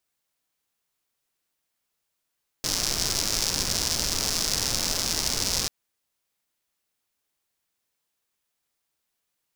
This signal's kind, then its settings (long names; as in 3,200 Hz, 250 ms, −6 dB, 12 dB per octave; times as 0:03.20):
rain-like ticks over hiss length 3.04 s, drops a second 180, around 5,300 Hz, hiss −4.5 dB